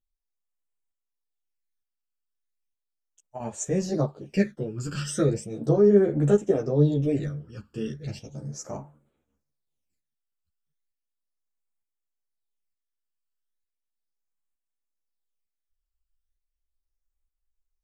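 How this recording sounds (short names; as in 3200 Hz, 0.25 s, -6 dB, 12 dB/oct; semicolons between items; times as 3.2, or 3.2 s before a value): phasing stages 12, 0.36 Hz, lowest notch 650–4900 Hz; tremolo saw up 1.1 Hz, depth 55%; a shimmering, thickened sound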